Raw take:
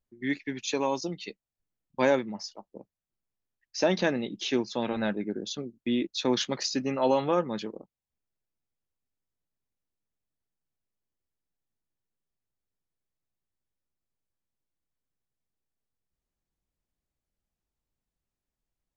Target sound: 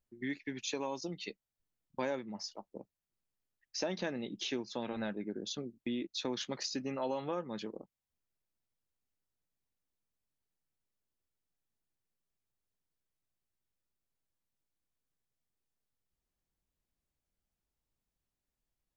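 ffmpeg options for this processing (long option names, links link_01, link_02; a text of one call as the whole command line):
ffmpeg -i in.wav -af "acompressor=threshold=-36dB:ratio=2.5,volume=-1.5dB" out.wav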